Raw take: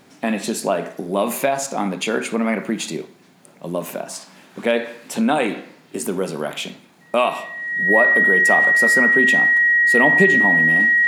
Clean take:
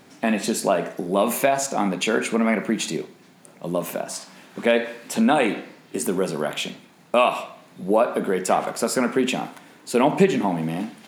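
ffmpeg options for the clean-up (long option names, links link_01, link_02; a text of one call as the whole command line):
ffmpeg -i in.wav -af "bandreject=frequency=1900:width=30" out.wav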